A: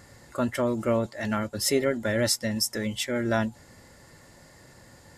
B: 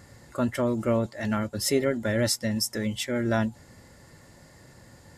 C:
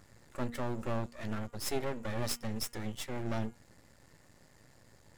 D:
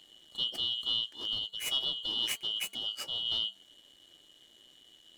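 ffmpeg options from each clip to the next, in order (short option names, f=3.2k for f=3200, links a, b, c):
-af "equalizer=f=110:w=0.39:g=4,volume=-1.5dB"
-af "aeval=exprs='max(val(0),0)':c=same,bandreject=f=237.3:t=h:w=4,bandreject=f=474.6:t=h:w=4,bandreject=f=711.9:t=h:w=4,bandreject=f=949.2:t=h:w=4,bandreject=f=1.1865k:t=h:w=4,bandreject=f=1.4238k:t=h:w=4,bandreject=f=1.6611k:t=h:w=4,bandreject=f=1.8984k:t=h:w=4,bandreject=f=2.1357k:t=h:w=4,bandreject=f=2.373k:t=h:w=4,bandreject=f=2.6103k:t=h:w=4,bandreject=f=2.8476k:t=h:w=4,bandreject=f=3.0849k:t=h:w=4,volume=-5.5dB"
-af "afftfilt=real='real(if(lt(b,272),68*(eq(floor(b/68),0)*1+eq(floor(b/68),1)*3+eq(floor(b/68),2)*0+eq(floor(b/68),3)*2)+mod(b,68),b),0)':imag='imag(if(lt(b,272),68*(eq(floor(b/68),0)*1+eq(floor(b/68),1)*3+eq(floor(b/68),2)*0+eq(floor(b/68),3)*2)+mod(b,68),b),0)':win_size=2048:overlap=0.75"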